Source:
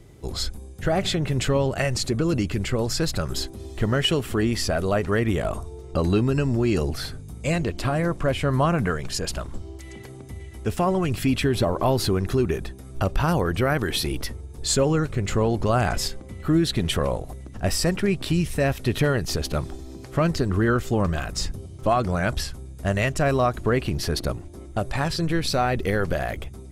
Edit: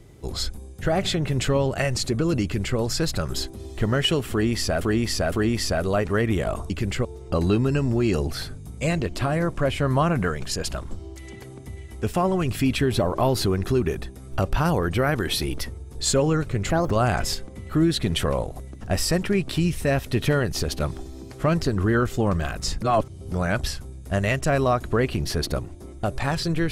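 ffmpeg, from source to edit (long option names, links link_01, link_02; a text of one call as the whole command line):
ffmpeg -i in.wav -filter_complex "[0:a]asplit=9[link_01][link_02][link_03][link_04][link_05][link_06][link_07][link_08][link_09];[link_01]atrim=end=4.812[link_10];[link_02]atrim=start=4.298:end=4.812[link_11];[link_03]atrim=start=4.298:end=5.682[link_12];[link_04]atrim=start=2.428:end=2.782[link_13];[link_05]atrim=start=5.678:end=15.334[link_14];[link_06]atrim=start=15.33:end=15.64,asetpts=PTS-STARTPTS,asetrate=65709,aresample=44100,atrim=end_sample=9175,asetpts=PTS-STARTPTS[link_15];[link_07]atrim=start=15.636:end=21.552[link_16];[link_08]atrim=start=21.548:end=22.052,asetpts=PTS-STARTPTS,areverse[link_17];[link_09]atrim=start=22.048[link_18];[link_10][link_11]acrossfade=duration=0.004:curve1=hsin:curve2=hsin[link_19];[link_19][link_12]acrossfade=duration=0.004:curve1=hsin:curve2=hsin[link_20];[link_20][link_13]acrossfade=duration=0.004:curve1=hsin:curve2=hsin[link_21];[link_21][link_14]acrossfade=duration=0.004:curve1=hsin:curve2=hsin[link_22];[link_22][link_15]acrossfade=duration=0.004:curve1=hsin:curve2=hsin[link_23];[link_23][link_16]acrossfade=duration=0.004:curve1=hsin:curve2=hsin[link_24];[link_24][link_17]acrossfade=duration=0.004:curve1=hsin:curve2=hsin[link_25];[link_25][link_18]acrossfade=duration=0.004:curve1=hsin:curve2=hsin" out.wav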